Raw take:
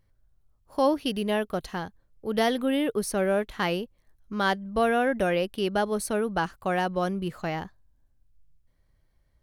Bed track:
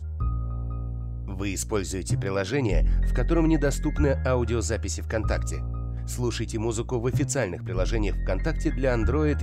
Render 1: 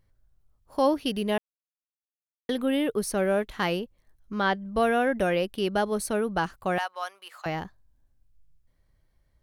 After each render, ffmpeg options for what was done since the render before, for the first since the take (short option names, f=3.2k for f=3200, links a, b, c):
-filter_complex "[0:a]asettb=1/sr,asplit=3[a][b][c];[a]atrim=end=3.794[d];[b]atrim=start=3.79:end=4.65,asetpts=PTS-STARTPTS,afade=t=in:d=0.004:c=qsin,afade=t=out:st=0.856:d=0.004:c=qsin,acrossover=split=4400[e][f];[f]acompressor=threshold=-57dB:ratio=4:attack=1:release=60[g];[e][g]amix=inputs=2:normalize=0[h];[c]atrim=start=4.646[i];[d][h]acrossfade=d=0.004:c1=hsin:c2=qsin[j];[j][i]acrossfade=d=0.004:c1=qsin:c2=hsin,asettb=1/sr,asplit=3[k][l][m];[k]atrim=end=6.784[n];[l]atrim=start=6.78:end=7.46,asetpts=PTS-STARTPTS,afade=t=in:d=0.004:c=qsin,afade=t=out:st=0.676:d=0.004:c=qsin,highpass=f=800:w=0.5412,highpass=f=800:w=1.3066[o];[m]atrim=start=7.456[p];[n][o]acrossfade=d=0.004:c1=hsin:c2=qsin[q];[q][p]acrossfade=d=0.004:c1=qsin:c2=hsin,asplit=3[r][s][t];[r]atrim=end=1.38,asetpts=PTS-STARTPTS,afade=t=out:st=1.376:d=0.004:c=hsin[u];[s]atrim=start=1.38:end=2.49,asetpts=PTS-STARTPTS,volume=0[v];[t]atrim=start=2.49,asetpts=PTS-STARTPTS,afade=t=in:d=0.004:c=hsin[w];[u][v][w]concat=n=3:v=0:a=1"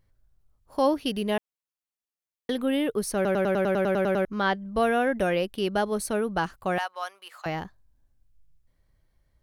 -filter_complex "[0:a]asplit=12[a][b][c][d][e][f][g][h][i][j][k][l];[a]atrim=end=3.252[m];[b]atrim=start=3.148:end=3.252[n];[c]atrim=start=3.148:end=3.252[o];[d]atrim=start=3.148:end=3.252[p];[e]atrim=start=3.148:end=3.252[q];[f]atrim=start=3.148:end=3.252[r];[g]atrim=start=3.148:end=3.252[s];[h]atrim=start=3.148:end=3.252[t];[i]atrim=start=3.148:end=3.252[u];[j]atrim=start=3.148:end=3.252[v];[k]atrim=start=3.148:end=3.252[w];[l]atrim=start=4.248[x];[m][n]acrossfade=d=0.004:c1=hsin:c2=hsin[y];[y][o]acrossfade=d=0.004:c1=hsin:c2=hsin[z];[z][p]acrossfade=d=0.004:c1=hsin:c2=hsin[aa];[aa][q]acrossfade=d=0.004:c1=hsin:c2=hsin[ab];[ab][r]acrossfade=d=0.004:c1=hsin:c2=hsin[ac];[ac][s]acrossfade=d=0.004:c1=hsin:c2=hsin[ad];[ad][t]acrossfade=d=0.004:c1=hsin:c2=hsin[ae];[ae][u]acrossfade=d=0.004:c1=hsin:c2=hsin[af];[af][v]acrossfade=d=0.004:c1=hsin:c2=hsin[ag];[ag][w]acrossfade=d=0.004:c1=hsin:c2=hsin[ah];[ah][x]acrossfade=d=0.004:c1=hsin:c2=hsin"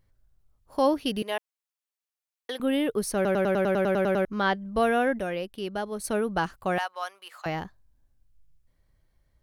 -filter_complex "[0:a]asettb=1/sr,asplit=3[a][b][c];[a]atrim=end=1.224[d];[b]atrim=start=1.22:end=2.6,asetpts=PTS-STARTPTS,afade=t=in:d=0.004:c=qsin,afade=t=out:st=1.376:d=0.004:c=qsin,highpass=590[e];[c]atrim=start=2.596[f];[d][e]acrossfade=d=0.004:c1=hsin:c2=qsin[g];[g][f]acrossfade=d=0.004:c1=qsin:c2=hsin,asplit=3[h][i][j];[h]atrim=end=5.192[k];[i]atrim=start=5.188:end=6.042,asetpts=PTS-STARTPTS,volume=-6dB[l];[j]atrim=start=6.038[m];[k][l]acrossfade=d=0.004:c1=hsin:c2=hsin[n];[n][m]acrossfade=d=0.004:c1=hsin:c2=hsin"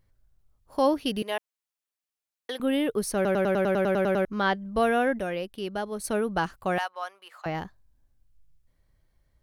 -filter_complex "[0:a]asettb=1/sr,asplit=3[a][b][c];[a]atrim=end=6.894[d];[b]atrim=start=6.89:end=7.55,asetpts=PTS-STARTPTS,afade=t=in:d=0.004:c=qsin,afade=t=out:st=0.656:d=0.004:c=qsin,highshelf=f=2.6k:g=-7[e];[c]atrim=start=7.546[f];[d][e]acrossfade=d=0.004:c1=hsin:c2=qsin[g];[g][f]acrossfade=d=0.004:c1=qsin:c2=hsin"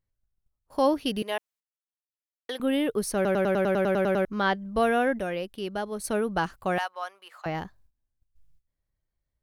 -af "agate=range=-15dB:threshold=-57dB:ratio=16:detection=peak"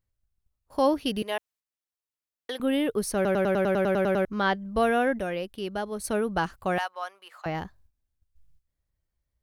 -af "equalizer=f=69:t=o:w=0.75:g=6"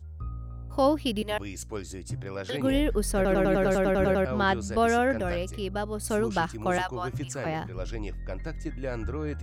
-filter_complex "[1:a]volume=-9dB[a];[0:a][a]amix=inputs=2:normalize=0"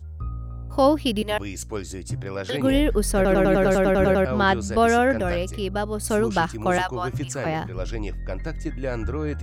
-af "volume=5dB"